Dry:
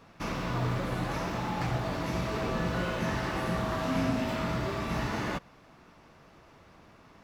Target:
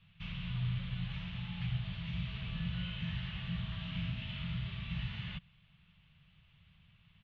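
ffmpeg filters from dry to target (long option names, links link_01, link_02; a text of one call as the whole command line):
ffmpeg -i in.wav -filter_complex "[0:a]firequalizer=gain_entry='entry(170,0);entry(270,-29);entry(3100,6);entry(5200,-17);entry(11000,-12)':delay=0.05:min_phase=1,acrossover=split=720|5000[link_01][link_02][link_03];[link_03]acrusher=bits=4:mix=0:aa=0.000001[link_04];[link_01][link_02][link_04]amix=inputs=3:normalize=0,volume=-3dB" out.wav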